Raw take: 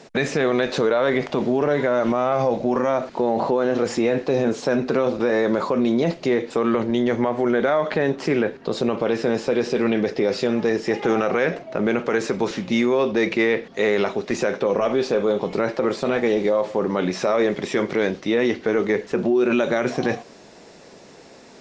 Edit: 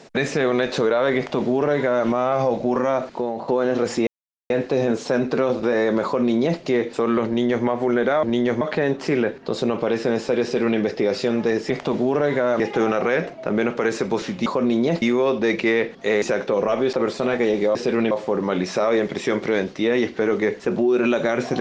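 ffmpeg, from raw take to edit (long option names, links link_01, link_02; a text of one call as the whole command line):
ffmpeg -i in.wav -filter_complex "[0:a]asplit=13[link_01][link_02][link_03][link_04][link_05][link_06][link_07][link_08][link_09][link_10][link_11][link_12][link_13];[link_01]atrim=end=3.48,asetpts=PTS-STARTPTS,afade=type=out:start_time=3.04:duration=0.44:silence=0.223872[link_14];[link_02]atrim=start=3.48:end=4.07,asetpts=PTS-STARTPTS,afade=type=in:duration=0.004:curve=hsin:silence=0.223872,afade=type=out:start_time=0.586:duration=0.004:curve=hsin,apad=pad_dur=0.43[link_15];[link_03]atrim=start=4.07:end=7.802,asetpts=PTS-STARTPTS,afade=type=in:duration=0.004:curve=hsin[link_16];[link_04]atrim=start=6.838:end=7.222[link_17];[link_05]atrim=start=7.798:end=10.892[link_18];[link_06]atrim=start=1.168:end=2.072[link_19];[link_07]atrim=start=10.888:end=12.752[link_20];[link_08]atrim=start=5.608:end=6.172[link_21];[link_09]atrim=start=12.748:end=13.952[link_22];[link_10]atrim=start=14.348:end=15.062[link_23];[link_11]atrim=start=15.758:end=16.582[link_24];[link_12]atrim=start=9.618:end=9.982[link_25];[link_13]atrim=start=16.578[link_26];[link_14][link_15][link_16]concat=n=3:v=0:a=1[link_27];[link_27][link_17]acrossfade=duration=0.004:curve1=hsin:curve2=hsin[link_28];[link_28][link_18]acrossfade=duration=0.004:curve1=hsin:curve2=hsin[link_29];[link_29][link_19]acrossfade=duration=0.004:curve1=hsin:curve2=hsin[link_30];[link_30][link_20]acrossfade=duration=0.004:curve1=hsin:curve2=hsin[link_31];[link_31][link_21]acrossfade=duration=0.004:curve1=hsin:curve2=hsin[link_32];[link_32][link_22]acrossfade=duration=0.004:curve1=hsin:curve2=hsin[link_33];[link_33][link_23]acrossfade=duration=0.004:curve1=hsin:curve2=hsin[link_34];[link_34][link_24]acrossfade=duration=0.004:curve1=hsin:curve2=hsin[link_35];[link_35][link_25]acrossfade=duration=0.004:curve1=hsin:curve2=hsin[link_36];[link_36][link_26]acrossfade=duration=0.004:curve1=hsin:curve2=hsin" out.wav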